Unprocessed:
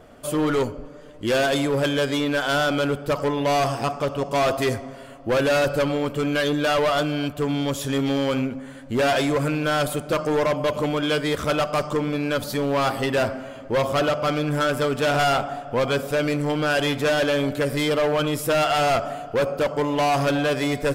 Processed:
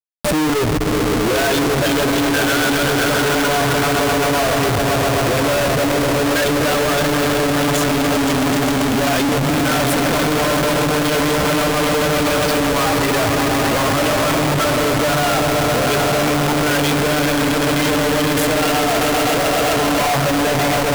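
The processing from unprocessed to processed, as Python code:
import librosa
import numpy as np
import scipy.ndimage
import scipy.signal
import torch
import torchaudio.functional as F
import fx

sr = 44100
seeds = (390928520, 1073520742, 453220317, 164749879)

p1 = fx.bin_expand(x, sr, power=2.0)
p2 = fx.high_shelf(p1, sr, hz=7200.0, db=-7.0)
p3 = fx.notch(p2, sr, hz=540.0, q=12.0)
p4 = fx.over_compress(p3, sr, threshold_db=-29.0, ratio=-0.5)
p5 = p3 + (p4 * librosa.db_to_amplitude(0.0))
p6 = fx.transient(p5, sr, attack_db=-1, sustain_db=6)
p7 = fx.echo_swell(p6, sr, ms=129, loudest=5, wet_db=-7.5)
p8 = fx.schmitt(p7, sr, flips_db=-32.5)
p9 = fx.transformer_sat(p8, sr, knee_hz=77.0)
y = p9 * librosa.db_to_amplitude(4.0)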